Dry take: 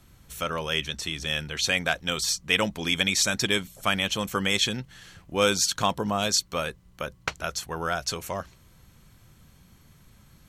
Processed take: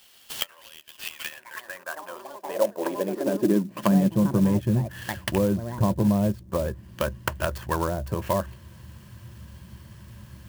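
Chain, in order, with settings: rattling part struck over -31 dBFS, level -21 dBFS; echoes that change speed 0.132 s, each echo +6 st, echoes 3, each echo -6 dB; treble ducked by the level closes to 490 Hz, closed at -24 dBFS; compressor 3:1, threshold -28 dBFS, peak gain reduction 5.5 dB; ripple EQ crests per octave 1.3, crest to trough 9 dB; high-pass sweep 3300 Hz -> 80 Hz, 0.9–4.74; 1.34–1.97 bell 3700 Hz -4.5 dB 1.7 oct; clock jitter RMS 0.038 ms; gain +6.5 dB

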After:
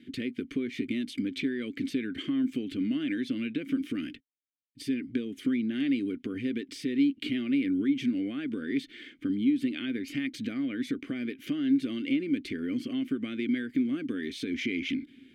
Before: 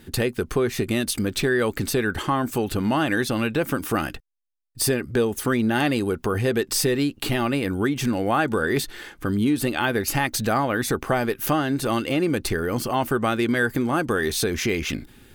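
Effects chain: 3.82–5.12 bell 790 Hz -7.5 dB 1.2 oct; compressor, threshold -23 dBFS, peak gain reduction 7 dB; vowel filter i; gain +6.5 dB

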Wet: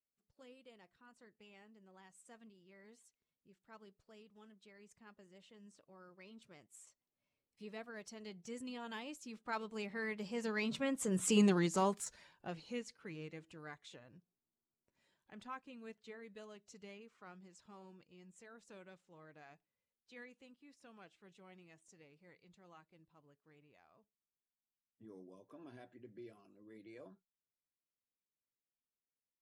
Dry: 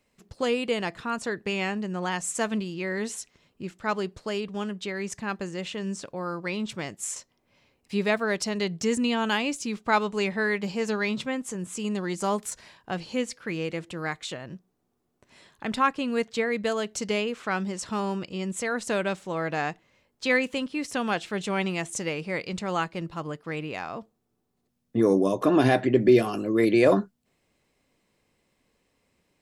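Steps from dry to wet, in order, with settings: bin magnitudes rounded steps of 15 dB; Doppler pass-by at 11.34, 14 m/s, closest 2.8 m; gain +2 dB

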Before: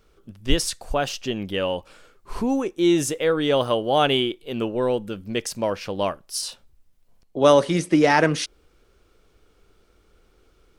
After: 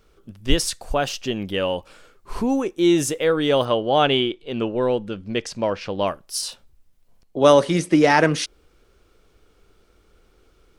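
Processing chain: 3.65–6.07 LPF 5400 Hz 12 dB/oct; gain +1.5 dB

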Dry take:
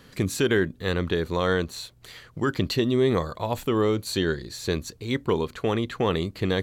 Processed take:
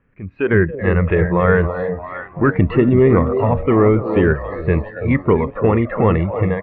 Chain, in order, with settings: echo with dull and thin repeats by turns 0.336 s, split 830 Hz, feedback 63%, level -7 dB; AGC gain up to 11.5 dB; on a send: frequency-shifting echo 0.279 s, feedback 32%, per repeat +84 Hz, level -12.5 dB; on the sum: spectral noise reduction 14 dB; in parallel at -9.5 dB: hard clip -12 dBFS, distortion -11 dB; on the sum: Chebyshev low-pass 2500 Hz, order 5; low shelf 79 Hz +10.5 dB; gain -1.5 dB

